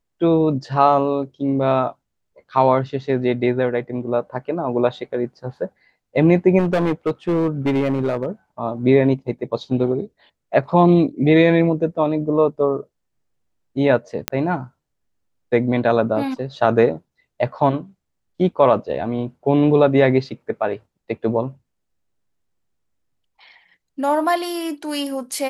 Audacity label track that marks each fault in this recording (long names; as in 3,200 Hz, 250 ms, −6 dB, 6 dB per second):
6.580000	8.260000	clipping −14.5 dBFS
14.280000	14.280000	click −2 dBFS